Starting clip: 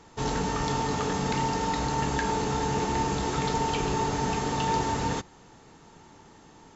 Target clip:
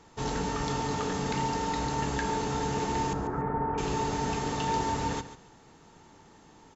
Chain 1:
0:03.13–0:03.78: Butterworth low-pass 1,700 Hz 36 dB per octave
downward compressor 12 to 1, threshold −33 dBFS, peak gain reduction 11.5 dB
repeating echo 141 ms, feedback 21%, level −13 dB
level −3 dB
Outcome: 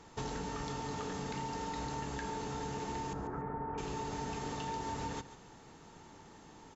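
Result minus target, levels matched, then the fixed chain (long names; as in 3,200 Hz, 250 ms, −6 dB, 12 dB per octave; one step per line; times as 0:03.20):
downward compressor: peak gain reduction +11.5 dB
0:03.13–0:03.78: Butterworth low-pass 1,700 Hz 36 dB per octave
repeating echo 141 ms, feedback 21%, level −13 dB
level −3 dB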